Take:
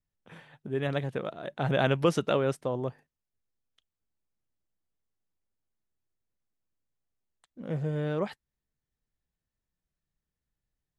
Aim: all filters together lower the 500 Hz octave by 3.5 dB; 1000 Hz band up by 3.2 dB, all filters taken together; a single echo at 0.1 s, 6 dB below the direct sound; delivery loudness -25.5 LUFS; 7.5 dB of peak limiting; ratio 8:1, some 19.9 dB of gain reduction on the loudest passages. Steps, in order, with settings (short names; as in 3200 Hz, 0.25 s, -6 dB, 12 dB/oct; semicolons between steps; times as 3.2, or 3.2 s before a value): bell 500 Hz -6 dB; bell 1000 Hz +6.5 dB; compressor 8:1, threshold -42 dBFS; limiter -36 dBFS; echo 0.1 s -6 dB; gain +22 dB